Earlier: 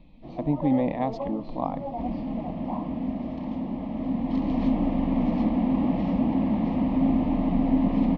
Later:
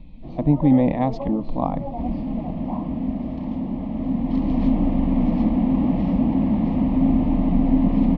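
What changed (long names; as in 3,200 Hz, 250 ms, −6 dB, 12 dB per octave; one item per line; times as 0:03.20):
speech +3.5 dB
master: add low-shelf EQ 220 Hz +9 dB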